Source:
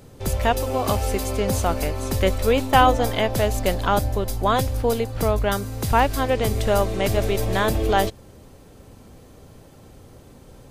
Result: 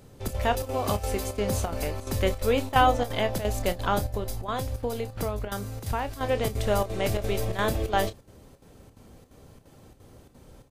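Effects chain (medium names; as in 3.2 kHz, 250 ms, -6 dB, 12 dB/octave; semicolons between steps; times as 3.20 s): 4.16–6.23 s: compression 10:1, threshold -20 dBFS, peak gain reduction 8.5 dB; square tremolo 2.9 Hz, depth 65%, duty 80%; doubling 29 ms -11.5 dB; trim -5 dB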